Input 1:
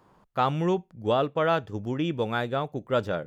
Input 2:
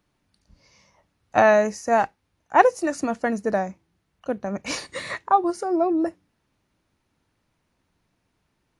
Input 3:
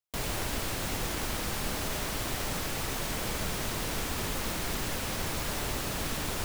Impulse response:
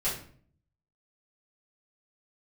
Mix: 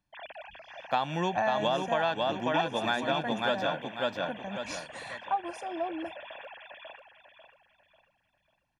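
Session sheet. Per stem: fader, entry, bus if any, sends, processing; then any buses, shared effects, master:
0.0 dB, 0.55 s, no send, echo send -4 dB, three-band isolator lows -22 dB, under 190 Hz, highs -13 dB, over 5300 Hz; gate with hold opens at -49 dBFS; high shelf 3000 Hz +10.5 dB
-12.0 dB, 0.00 s, no send, no echo send, dry
-11.0 dB, 0.00 s, no send, echo send -6 dB, sine-wave speech; resonant low shelf 560 Hz +10.5 dB, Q 1.5; auto duck -9 dB, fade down 0.70 s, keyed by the second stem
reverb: off
echo: feedback echo 0.544 s, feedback 35%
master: comb 1.2 ms, depth 62%; compressor 6:1, threshold -24 dBFS, peak gain reduction 9 dB

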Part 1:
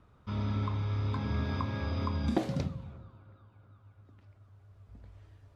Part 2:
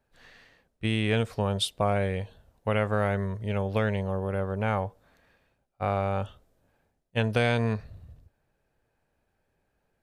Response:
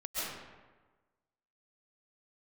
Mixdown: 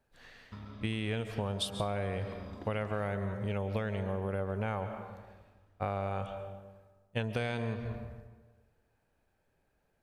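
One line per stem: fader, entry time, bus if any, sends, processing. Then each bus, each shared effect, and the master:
+2.0 dB, 0.25 s, send -10.5 dB, compressor 6:1, threshold -39 dBFS, peak gain reduction 15 dB; power-law curve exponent 1.4; auto duck -11 dB, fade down 1.10 s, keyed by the second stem
-2.0 dB, 0.00 s, send -15 dB, dry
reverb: on, RT60 1.3 s, pre-delay 95 ms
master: compressor 6:1, threshold -30 dBFS, peak gain reduction 9.5 dB

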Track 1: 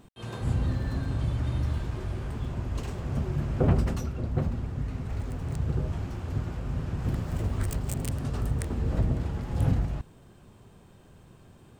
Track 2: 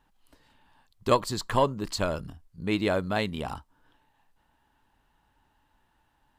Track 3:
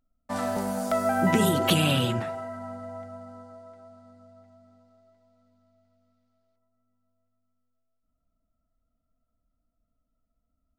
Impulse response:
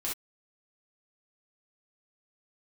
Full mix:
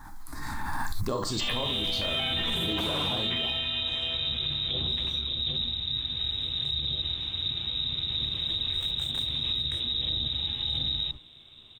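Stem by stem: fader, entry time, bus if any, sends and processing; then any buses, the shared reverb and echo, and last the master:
-0.5 dB, 1.10 s, bus A, send -12.5 dB, dry
-6.5 dB, 0.00 s, no bus, send -3.5 dB, modulation noise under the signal 28 dB; envelope phaser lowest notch 490 Hz, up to 2400 Hz, full sweep at -25.5 dBFS; backwards sustainer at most 22 dB/s
-4.0 dB, 1.10 s, bus A, send -14.5 dB, sample leveller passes 3
bus A: 0.0 dB, inverted band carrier 3800 Hz; limiter -16.5 dBFS, peak gain reduction 8.5 dB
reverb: on, pre-delay 3 ms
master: limiter -20.5 dBFS, peak gain reduction 11 dB

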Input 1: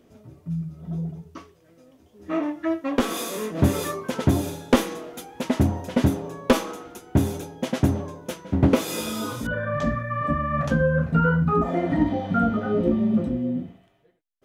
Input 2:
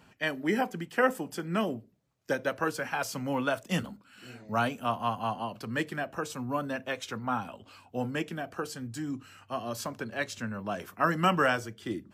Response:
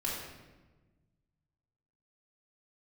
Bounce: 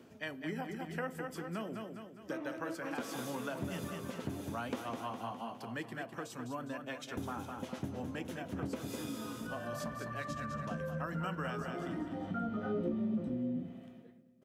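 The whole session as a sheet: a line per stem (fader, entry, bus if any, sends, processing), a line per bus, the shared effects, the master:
-0.5 dB, 0.00 s, muted 5.07–7.17, no send, echo send -22 dB, auto duck -14 dB, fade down 0.30 s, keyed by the second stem
-8.5 dB, 0.00 s, send -24 dB, echo send -7 dB, dry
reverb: on, RT60 1.2 s, pre-delay 3 ms
echo: feedback echo 0.205 s, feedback 47%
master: HPF 120 Hz 12 dB/oct; low shelf 200 Hz +3.5 dB; compressor 3:1, threshold -37 dBFS, peak gain reduction 16 dB

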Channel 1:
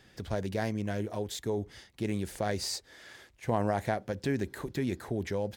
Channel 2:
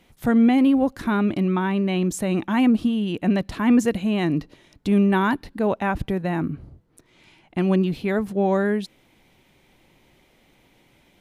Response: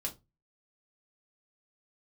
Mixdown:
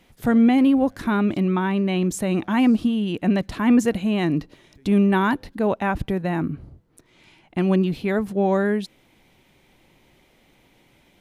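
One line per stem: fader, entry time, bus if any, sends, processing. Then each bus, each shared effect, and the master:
-11.0 dB, 0.00 s, no send, auto duck -13 dB, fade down 0.90 s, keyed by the second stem
+0.5 dB, 0.00 s, no send, dry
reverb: off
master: dry

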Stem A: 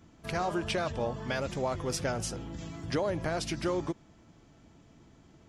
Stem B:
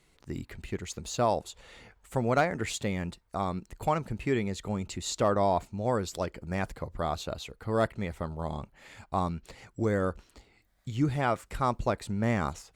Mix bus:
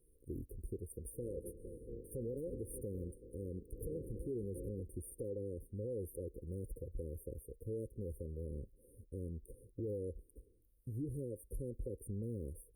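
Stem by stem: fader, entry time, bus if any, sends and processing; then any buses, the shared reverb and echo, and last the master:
-6.5 dB, 0.90 s, no send, spectral limiter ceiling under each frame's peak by 23 dB; LPF 2200 Hz 12 dB/oct
+1.0 dB, 0.00 s, no send, compressor 2:1, threshold -30 dBFS, peak gain reduction 6.5 dB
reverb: off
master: brick-wall FIR band-stop 540–8700 Hz; bell 180 Hz -13 dB 1.5 oct; limiter -33.5 dBFS, peak gain reduction 7.5 dB

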